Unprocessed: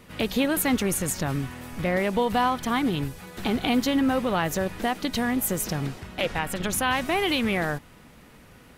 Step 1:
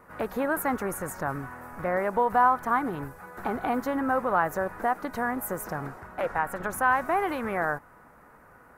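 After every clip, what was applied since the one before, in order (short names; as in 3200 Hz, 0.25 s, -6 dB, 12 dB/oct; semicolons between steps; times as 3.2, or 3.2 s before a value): EQ curve 220 Hz 0 dB, 940 Hz +13 dB, 1500 Hz +13 dB, 3200 Hz -14 dB, 14000 Hz +3 dB; gain -9 dB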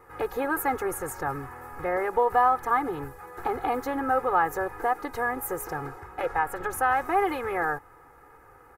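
comb 2.4 ms, depth 89%; gain -1.5 dB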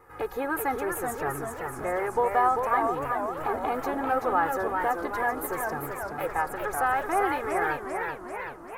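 warbling echo 0.387 s, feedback 61%, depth 174 cents, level -5 dB; gain -2 dB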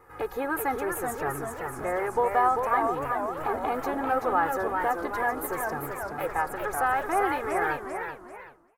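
ending faded out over 1.03 s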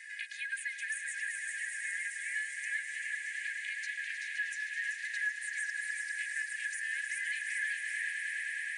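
brick-wall FIR band-pass 1600–10000 Hz; swelling echo 0.104 s, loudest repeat 5, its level -10.5 dB; three-band squash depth 70%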